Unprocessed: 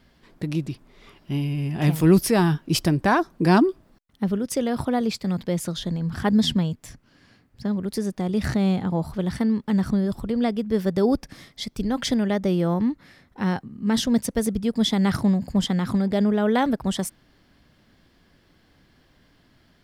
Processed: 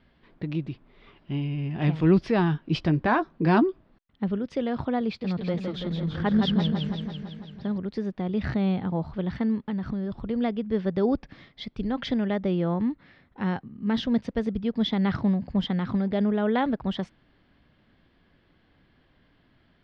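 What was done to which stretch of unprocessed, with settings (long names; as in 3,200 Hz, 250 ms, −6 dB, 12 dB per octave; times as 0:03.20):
0:02.65–0:03.63: double-tracking delay 13 ms −10 dB
0:05.05–0:07.78: feedback echo with a swinging delay time 167 ms, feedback 66%, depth 107 cents, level −4.5 dB
0:09.55–0:10.19: downward compressor, threshold −22 dBFS
whole clip: low-pass filter 3,700 Hz 24 dB per octave; level −3.5 dB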